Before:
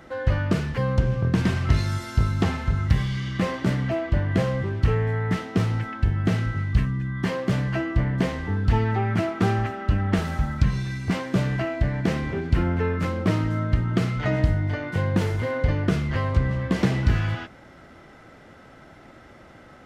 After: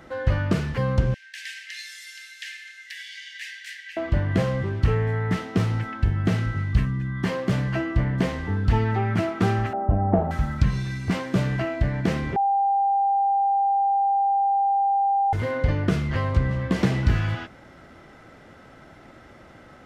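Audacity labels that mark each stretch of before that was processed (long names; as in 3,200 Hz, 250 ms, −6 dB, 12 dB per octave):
1.140000	3.970000	Chebyshev high-pass filter 1,600 Hz, order 8
9.730000	10.310000	low-pass with resonance 720 Hz, resonance Q 5.2
12.360000	15.330000	beep over 794 Hz −18 dBFS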